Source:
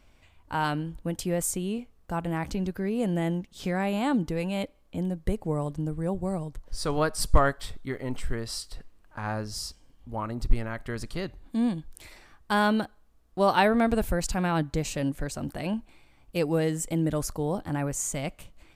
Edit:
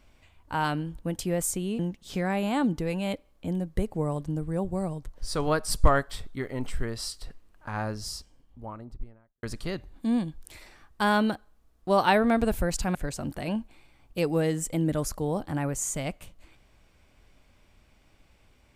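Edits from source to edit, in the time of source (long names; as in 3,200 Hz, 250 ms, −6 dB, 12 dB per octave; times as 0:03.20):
0:01.79–0:03.29: remove
0:09.42–0:10.93: fade out and dull
0:14.45–0:15.13: remove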